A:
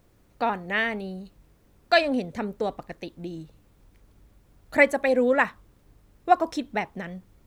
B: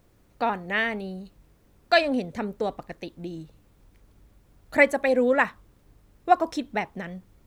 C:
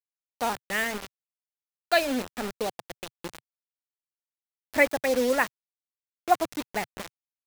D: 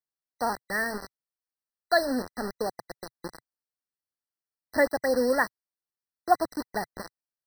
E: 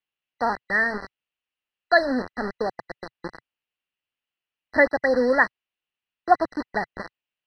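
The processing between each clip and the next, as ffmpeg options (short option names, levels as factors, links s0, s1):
-af anull
-af "acrusher=bits=4:mix=0:aa=0.000001,equalizer=f=130:w=4.3:g=-12.5,volume=0.708"
-af "afftfilt=real='re*eq(mod(floor(b*sr/1024/2000),2),0)':imag='im*eq(mod(floor(b*sr/1024/2000),2),0)':win_size=1024:overlap=0.75"
-af "lowpass=f=2800:t=q:w=5.6,volume=1.5"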